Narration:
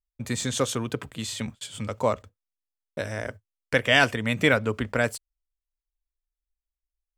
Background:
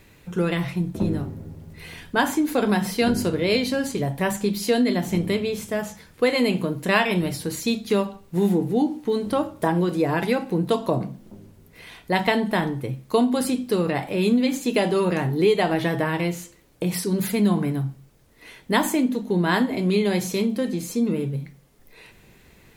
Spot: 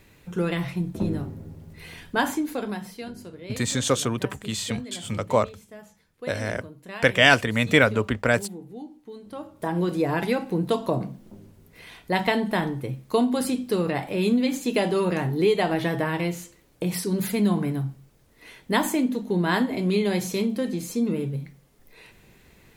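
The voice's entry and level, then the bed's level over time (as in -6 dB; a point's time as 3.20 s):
3.30 s, +3.0 dB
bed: 2.28 s -2.5 dB
3.14 s -18 dB
9.22 s -18 dB
9.84 s -2 dB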